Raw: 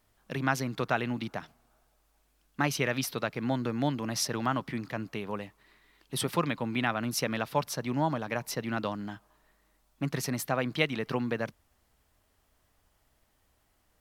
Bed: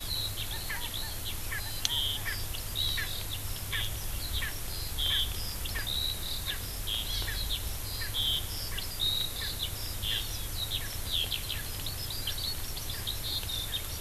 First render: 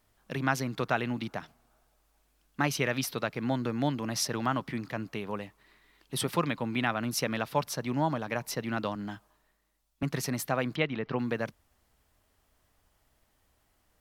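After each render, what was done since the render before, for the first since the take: 8.95–10.03 s: three bands expanded up and down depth 40%; 10.76–11.19 s: distance through air 240 m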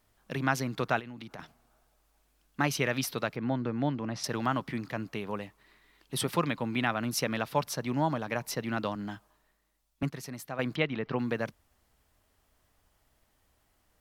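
0.99–1.39 s: compression 16:1, threshold -39 dBFS; 3.36–4.24 s: tape spacing loss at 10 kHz 21 dB; 10.10–10.59 s: gain -9 dB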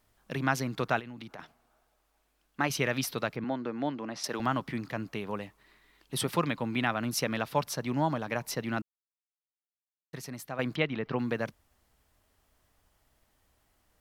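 1.31–2.70 s: tone controls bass -6 dB, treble -4 dB; 3.44–4.40 s: high-pass 250 Hz; 8.82–10.13 s: mute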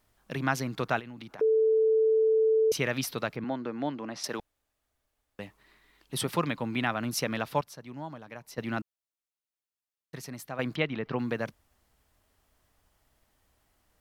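1.41–2.72 s: bleep 441 Hz -20 dBFS; 4.40–5.39 s: room tone; 7.61–8.58 s: gain -11.5 dB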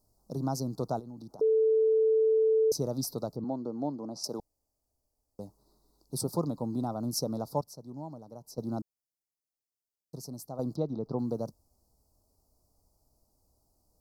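elliptic band-stop 1.1–4.7 kHz, stop band 40 dB; peaking EQ 1.1 kHz -11 dB 0.45 oct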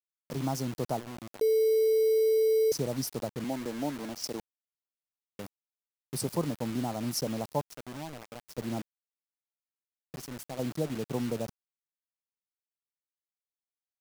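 bit crusher 7-bit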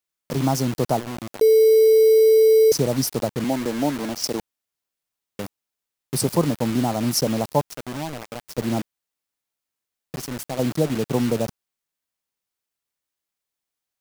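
trim +10.5 dB

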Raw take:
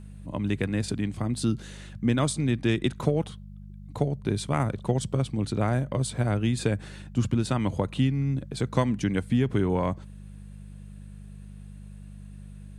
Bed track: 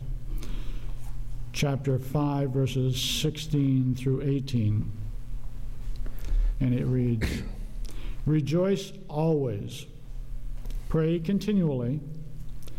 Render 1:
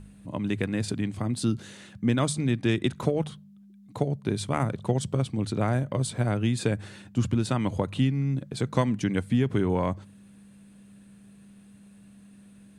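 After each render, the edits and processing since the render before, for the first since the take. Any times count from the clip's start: de-hum 50 Hz, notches 3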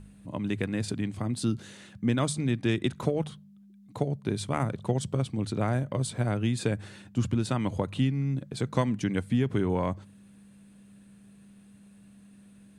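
trim -2 dB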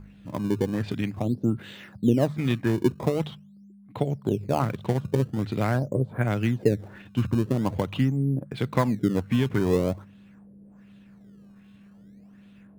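LFO low-pass sine 1.3 Hz 410–3400 Hz; in parallel at -9.5 dB: decimation with a swept rate 19×, swing 160% 0.45 Hz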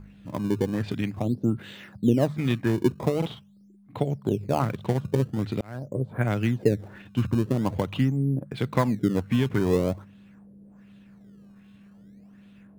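3.18–3.99 s: doubling 43 ms -3 dB; 5.61–6.16 s: fade in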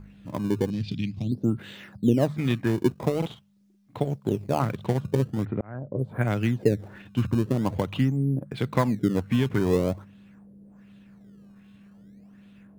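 0.70–1.32 s: FFT filter 120 Hz 0 dB, 170 Hz +3 dB, 480 Hz -14 dB, 1.2 kHz -20 dB, 1.7 kHz -17 dB, 2.5 kHz -1 dB, 4.9 kHz +4 dB, 7.5 kHz -8 dB, 13 kHz -13 dB; 2.66–4.60 s: companding laws mixed up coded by A; 5.45–5.99 s: low-pass 1.8 kHz 24 dB/octave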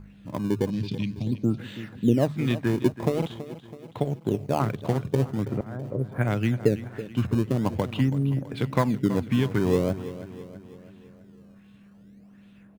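feedback delay 328 ms, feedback 52%, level -14 dB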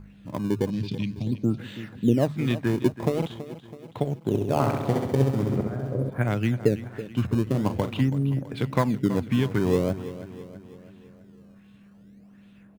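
4.28–6.10 s: flutter echo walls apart 11.5 m, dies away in 1 s; 7.43–8.03 s: doubling 38 ms -9 dB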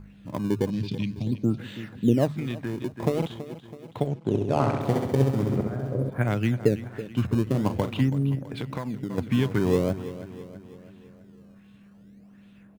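2.39–2.99 s: compression 2.5:1, threshold -29 dBFS; 4.07–4.81 s: distance through air 54 m; 8.35–9.18 s: compression 4:1, threshold -28 dBFS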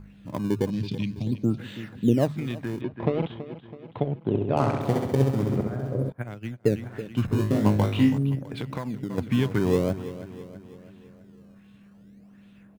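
2.81–4.57 s: low-pass 3.3 kHz 24 dB/octave; 6.12–6.68 s: upward expansion 2.5:1, over -32 dBFS; 7.26–8.18 s: flutter echo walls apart 3.3 m, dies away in 0.36 s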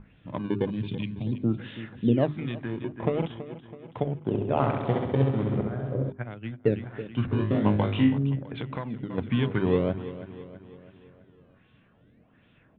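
elliptic low-pass 3.5 kHz, stop band 40 dB; hum notches 50/100/150/200/250/300/350/400 Hz

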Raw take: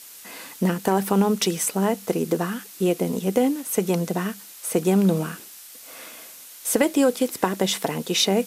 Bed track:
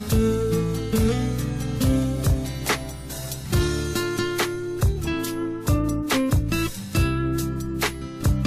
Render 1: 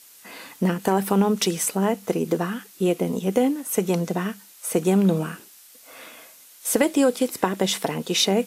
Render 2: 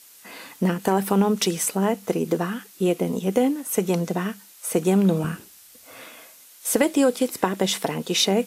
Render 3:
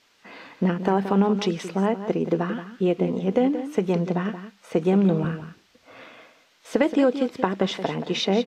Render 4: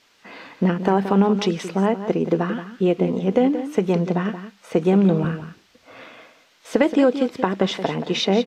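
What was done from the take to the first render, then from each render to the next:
noise print and reduce 6 dB
5.24–6.04 s: peaking EQ 67 Hz +14 dB 2.6 oct
distance through air 210 m; on a send: delay 176 ms -11 dB
trim +3 dB; peak limiter -1 dBFS, peak gain reduction 1.5 dB

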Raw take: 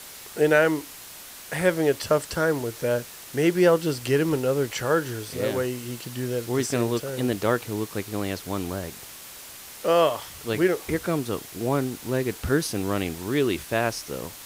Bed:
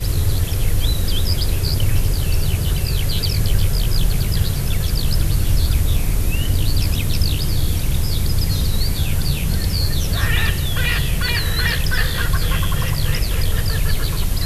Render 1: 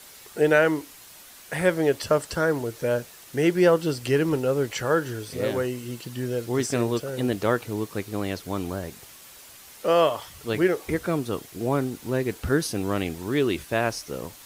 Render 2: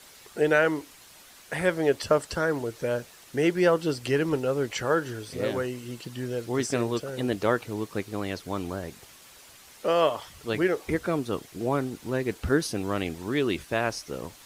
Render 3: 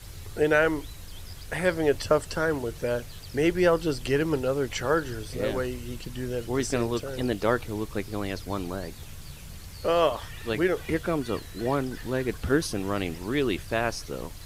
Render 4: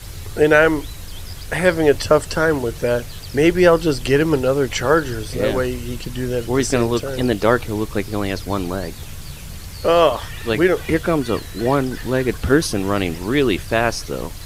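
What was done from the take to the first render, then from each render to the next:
noise reduction 6 dB, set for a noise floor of -43 dBFS
harmonic-percussive split harmonic -4 dB; treble shelf 12 kHz -10 dB
add bed -24 dB
trim +9 dB; peak limiter -1 dBFS, peak gain reduction 1.5 dB

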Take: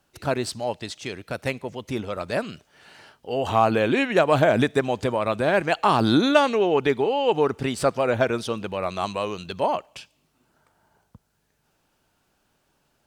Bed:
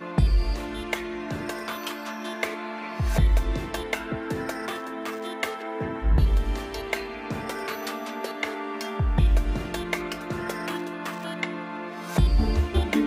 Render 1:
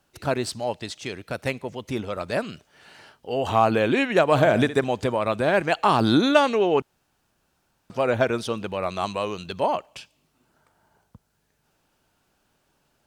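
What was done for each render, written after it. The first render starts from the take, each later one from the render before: 4.24–4.84 s: flutter echo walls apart 11.6 m, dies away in 0.3 s; 6.82–7.90 s: room tone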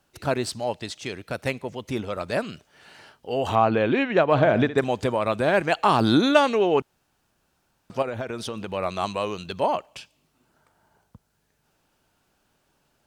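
3.55–4.78 s: distance through air 180 m; 8.02–8.73 s: compression, threshold -27 dBFS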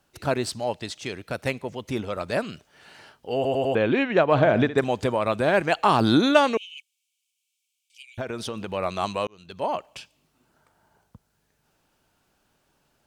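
3.35 s: stutter in place 0.10 s, 4 plays; 6.57–8.18 s: rippled Chebyshev high-pass 2.2 kHz, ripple 6 dB; 9.27–9.89 s: fade in linear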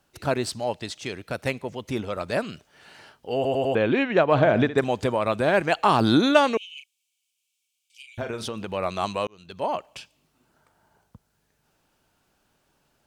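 6.74–8.48 s: doubling 36 ms -7 dB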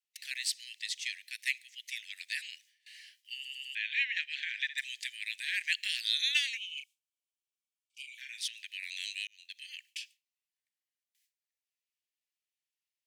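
gate with hold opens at -42 dBFS; steep high-pass 1.8 kHz 96 dB/octave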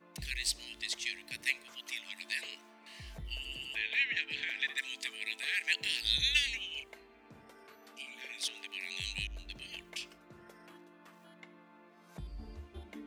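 add bed -25 dB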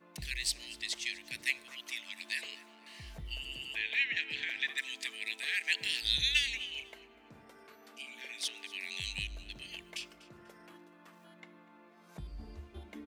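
feedback delay 245 ms, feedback 29%, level -19.5 dB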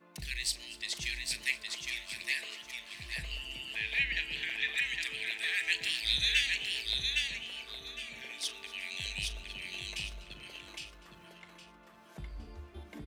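doubling 39 ms -14 dB; feedback delay 812 ms, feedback 25%, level -3 dB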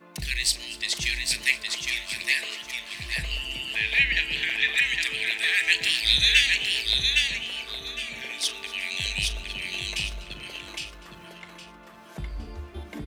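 trim +9.5 dB

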